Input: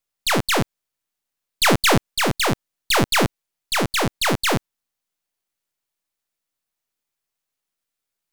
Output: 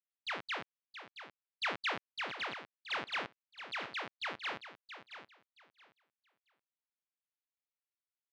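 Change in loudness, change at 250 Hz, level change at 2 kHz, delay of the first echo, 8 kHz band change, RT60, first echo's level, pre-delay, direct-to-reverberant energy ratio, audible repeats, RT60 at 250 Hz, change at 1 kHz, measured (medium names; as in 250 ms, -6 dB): -19.5 dB, -29.5 dB, -15.5 dB, 674 ms, -34.5 dB, no reverb, -11.0 dB, no reverb, no reverb, 2, no reverb, -18.5 dB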